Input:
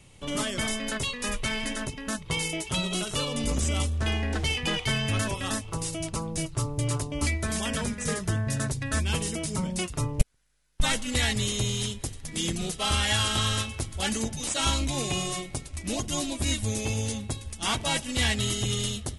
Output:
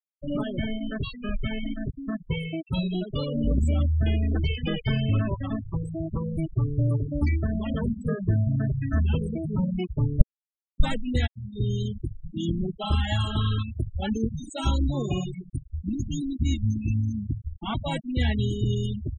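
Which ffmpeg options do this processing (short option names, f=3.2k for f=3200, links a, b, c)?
-filter_complex "[0:a]asettb=1/sr,asplit=3[a][b][c];[a]atrim=end=15.244[d];[b]atrim=start=15.24:end=17.46,asetpts=PTS-STARTPTS,afade=t=in:d=0.004:c=qsin,afade=t=out:st=2.216:d=0.004:c=qsin,asuperstop=centerf=680:order=8:qfactor=0.69[e];[c]atrim=start=17.456[f];[d][e]acrossfade=d=0.004:c1=hsin:c2=qsin[g];[g][f]acrossfade=d=0.004:c1=qsin:c2=hsin,asplit=2[h][i];[h]atrim=end=11.27,asetpts=PTS-STARTPTS,afade=t=out:st=11.266:d=0.004:c=hsin[j];[i]atrim=start=11.27,asetpts=PTS-STARTPTS,afade=t=in:d=0.46[k];[j][k]concat=n=2:v=0:a=1,afftfilt=real='re*gte(hypot(re,im),0.0794)':imag='im*gte(hypot(re,im),0.0794)':win_size=1024:overlap=0.75,tiltshelf=f=970:g=6.5,volume=-1dB"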